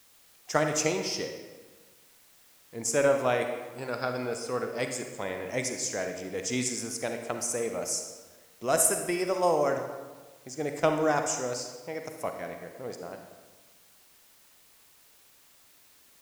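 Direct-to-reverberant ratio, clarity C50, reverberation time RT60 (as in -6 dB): 5.0 dB, 5.5 dB, 1.3 s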